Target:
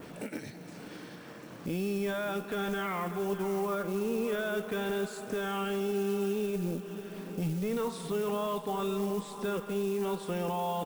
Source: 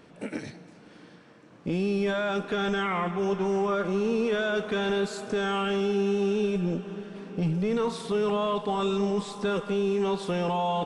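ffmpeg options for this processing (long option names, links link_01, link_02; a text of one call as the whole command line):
ffmpeg -i in.wav -filter_complex "[0:a]acompressor=mode=upward:threshold=-29dB:ratio=2.5,adynamicequalizer=threshold=0.00251:dfrequency=5000:dqfactor=0.84:tfrequency=5000:tqfactor=0.84:attack=5:release=100:ratio=0.375:range=3.5:mode=cutabove:tftype=bell,acrusher=bits=6:mode=log:mix=0:aa=0.000001,crystalizer=i=1:c=0,asplit=2[link_01][link_02];[link_02]aecho=0:1:587:0.188[link_03];[link_01][link_03]amix=inputs=2:normalize=0,volume=-5.5dB" out.wav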